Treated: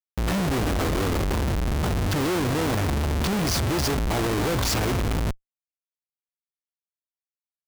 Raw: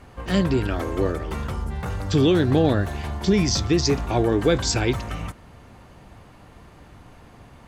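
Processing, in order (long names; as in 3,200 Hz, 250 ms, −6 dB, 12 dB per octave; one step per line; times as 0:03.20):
comparator with hysteresis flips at −31.5 dBFS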